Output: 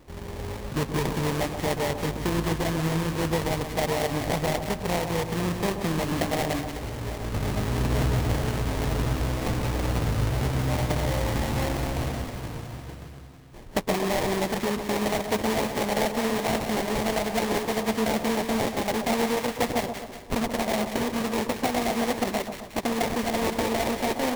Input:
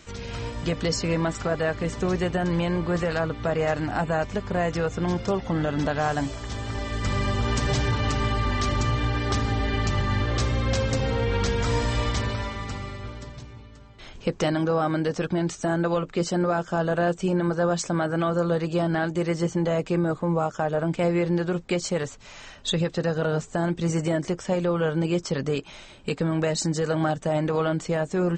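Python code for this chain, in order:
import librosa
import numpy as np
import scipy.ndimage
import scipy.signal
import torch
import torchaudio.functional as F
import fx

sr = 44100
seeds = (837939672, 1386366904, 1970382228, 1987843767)

p1 = fx.speed_glide(x, sr, from_pct=87, to_pct=146)
p2 = fx.hpss(p1, sr, part='harmonic', gain_db=-3)
p3 = fx.sample_hold(p2, sr, seeds[0], rate_hz=1400.0, jitter_pct=20)
y = p3 + fx.echo_split(p3, sr, split_hz=1200.0, low_ms=130, high_ms=182, feedback_pct=52, wet_db=-8.0, dry=0)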